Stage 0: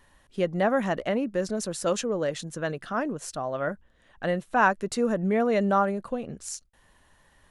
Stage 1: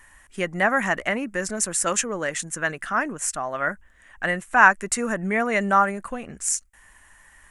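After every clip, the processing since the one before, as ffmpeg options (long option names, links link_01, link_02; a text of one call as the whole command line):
ffmpeg -i in.wav -af "equalizer=frequency=125:width_type=o:width=1:gain=-10,equalizer=frequency=250:width_type=o:width=1:gain=-4,equalizer=frequency=500:width_type=o:width=1:gain=-9,equalizer=frequency=2000:width_type=o:width=1:gain=8,equalizer=frequency=4000:width_type=o:width=1:gain=-11,equalizer=frequency=8000:width_type=o:width=1:gain=10,volume=6.5dB" out.wav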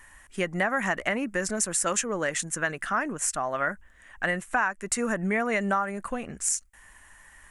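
ffmpeg -i in.wav -af "acompressor=threshold=-22dB:ratio=8" out.wav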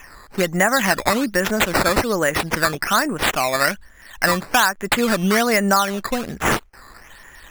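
ffmpeg -i in.wav -af "acrusher=samples=10:mix=1:aa=0.000001:lfo=1:lforange=10:lforate=1.2,volume=9dB" out.wav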